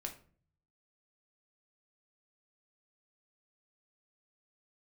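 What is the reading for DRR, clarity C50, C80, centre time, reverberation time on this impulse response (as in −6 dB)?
2.0 dB, 11.5 dB, 16.5 dB, 13 ms, 0.45 s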